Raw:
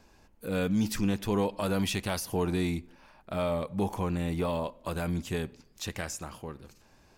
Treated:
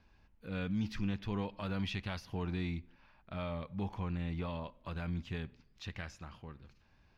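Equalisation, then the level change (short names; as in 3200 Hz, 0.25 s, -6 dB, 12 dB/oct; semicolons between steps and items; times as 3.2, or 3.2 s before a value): air absorption 280 m; passive tone stack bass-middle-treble 5-5-5; low shelf 380 Hz +5 dB; +6.0 dB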